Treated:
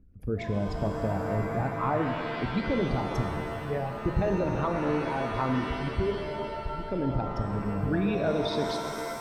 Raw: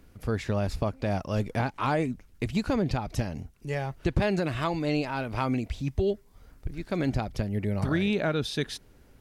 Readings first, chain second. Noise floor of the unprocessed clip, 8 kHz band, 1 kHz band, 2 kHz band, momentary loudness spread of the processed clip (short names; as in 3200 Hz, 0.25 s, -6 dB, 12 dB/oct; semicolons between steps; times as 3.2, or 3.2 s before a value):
-57 dBFS, n/a, +2.5 dB, -1.0 dB, 6 LU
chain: formant sharpening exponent 2; shimmer reverb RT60 2.7 s, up +7 st, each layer -2 dB, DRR 5 dB; gain -2 dB